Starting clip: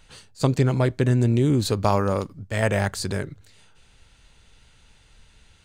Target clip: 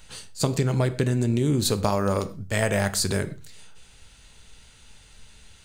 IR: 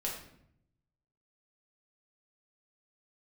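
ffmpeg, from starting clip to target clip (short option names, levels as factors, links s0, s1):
-filter_complex "[0:a]highshelf=f=5200:g=9,acompressor=threshold=0.0891:ratio=6,asplit=2[s0][s1];[1:a]atrim=start_sample=2205,afade=t=out:st=0.19:d=0.01,atrim=end_sample=8820[s2];[s1][s2]afir=irnorm=-1:irlink=0,volume=0.316[s3];[s0][s3]amix=inputs=2:normalize=0"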